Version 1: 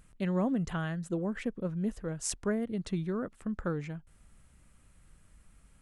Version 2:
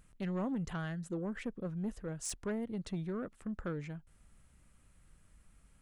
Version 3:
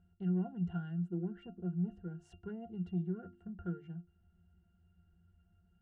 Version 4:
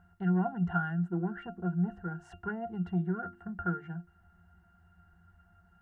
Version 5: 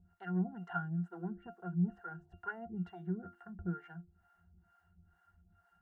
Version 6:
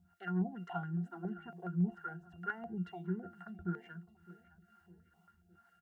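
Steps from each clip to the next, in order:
soft clipping −26.5 dBFS, distortion −16 dB; level −3.5 dB
mains-hum notches 50/100/150/200/250/300/350 Hz; resonances in every octave F, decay 0.15 s; level +7 dB
flat-topped bell 1,200 Hz +14.5 dB; level +5 dB
two-band tremolo in antiphase 2.2 Hz, depth 100%, crossover 470 Hz; level −1.5 dB
high-pass filter 280 Hz 6 dB per octave; repeating echo 609 ms, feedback 50%, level −19.5 dB; notch on a step sequencer 7.2 Hz 470–1,600 Hz; level +5.5 dB

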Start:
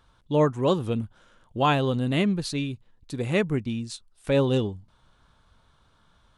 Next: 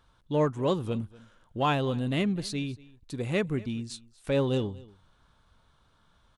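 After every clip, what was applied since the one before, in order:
in parallel at −11.5 dB: soft clipping −27 dBFS, distortion −7 dB
on the sum: single-tap delay 238 ms −22 dB
level −5 dB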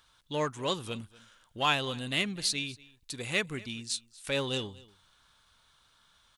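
tilt shelving filter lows −9.5 dB, about 1,200 Hz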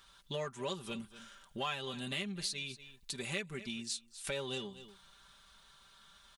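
comb filter 5.1 ms, depth 80%
downward compressor 3 to 1, threshold −41 dBFS, peak gain reduction 16 dB
level +1.5 dB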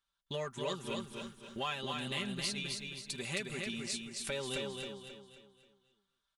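noise gate −53 dBFS, range −25 dB
on a send: repeating echo 267 ms, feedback 40%, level −4 dB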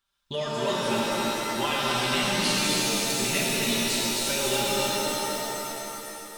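reverb with rising layers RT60 3.2 s, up +7 semitones, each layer −2 dB, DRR −4 dB
level +5.5 dB

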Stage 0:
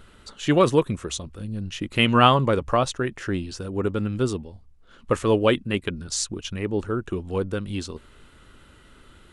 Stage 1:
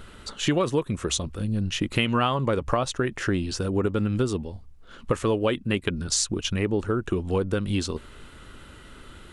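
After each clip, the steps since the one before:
downward compressor 6 to 1, threshold −26 dBFS, peak gain reduction 15 dB
level +5.5 dB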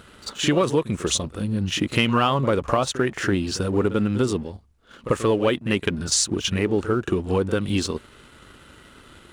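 high-pass filter 98 Hz 6 dB per octave
echo ahead of the sound 43 ms −13 dB
leveller curve on the samples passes 1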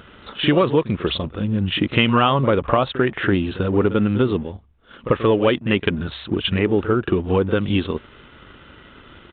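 downsampling to 8,000 Hz
level +3.5 dB

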